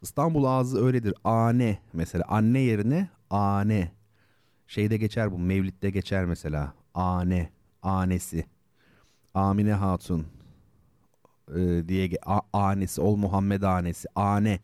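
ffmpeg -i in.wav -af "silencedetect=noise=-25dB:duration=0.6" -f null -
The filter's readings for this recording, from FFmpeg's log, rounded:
silence_start: 3.85
silence_end: 4.77 | silence_duration: 0.93
silence_start: 8.41
silence_end: 9.36 | silence_duration: 0.95
silence_start: 10.21
silence_end: 11.56 | silence_duration: 1.34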